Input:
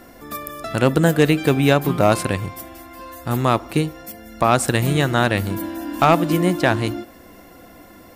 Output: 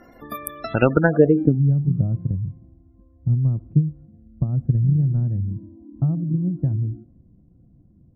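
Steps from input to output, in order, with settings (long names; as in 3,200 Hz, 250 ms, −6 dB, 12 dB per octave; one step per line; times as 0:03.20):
transient designer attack +8 dB, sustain +4 dB
gate on every frequency bin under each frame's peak −20 dB strong
low-pass filter sweep 11,000 Hz → 140 Hz, 0:00.58–0:01.61
level −5 dB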